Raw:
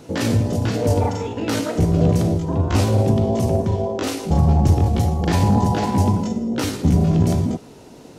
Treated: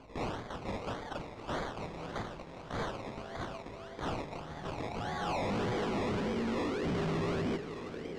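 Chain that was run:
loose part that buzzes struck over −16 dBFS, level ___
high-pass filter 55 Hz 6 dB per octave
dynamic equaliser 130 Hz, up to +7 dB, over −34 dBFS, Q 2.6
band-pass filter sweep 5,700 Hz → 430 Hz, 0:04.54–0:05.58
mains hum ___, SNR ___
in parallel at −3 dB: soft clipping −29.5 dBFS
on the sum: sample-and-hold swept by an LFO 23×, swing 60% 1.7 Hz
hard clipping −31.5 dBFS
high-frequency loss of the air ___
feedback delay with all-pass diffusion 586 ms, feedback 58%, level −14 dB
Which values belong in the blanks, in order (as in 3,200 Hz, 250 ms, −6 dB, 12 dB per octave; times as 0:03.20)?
−26 dBFS, 50 Hz, 33 dB, 120 metres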